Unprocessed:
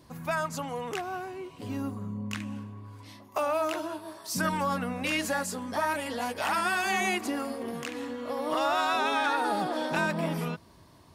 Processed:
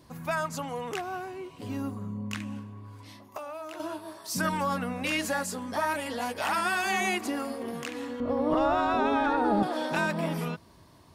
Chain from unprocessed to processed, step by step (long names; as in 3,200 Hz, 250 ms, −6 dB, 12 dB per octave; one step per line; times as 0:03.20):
0:02.59–0:03.80: downward compressor 6 to 1, threshold −37 dBFS, peak gain reduction 12 dB
0:08.20–0:09.63: spectral tilt −4.5 dB per octave